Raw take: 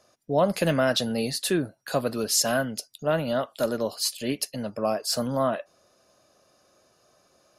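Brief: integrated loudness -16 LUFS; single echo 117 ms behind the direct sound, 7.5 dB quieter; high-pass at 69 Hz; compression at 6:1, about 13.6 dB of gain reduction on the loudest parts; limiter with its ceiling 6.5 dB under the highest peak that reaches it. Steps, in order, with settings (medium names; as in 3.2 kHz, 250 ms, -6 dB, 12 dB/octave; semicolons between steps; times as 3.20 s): high-pass 69 Hz; compression 6:1, threshold -33 dBFS; peak limiter -27 dBFS; delay 117 ms -7.5 dB; trim +21.5 dB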